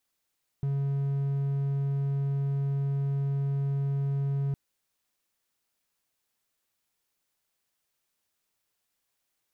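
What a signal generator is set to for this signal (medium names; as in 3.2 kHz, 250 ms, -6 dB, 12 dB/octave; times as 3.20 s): tone triangle 139 Hz -23.5 dBFS 3.91 s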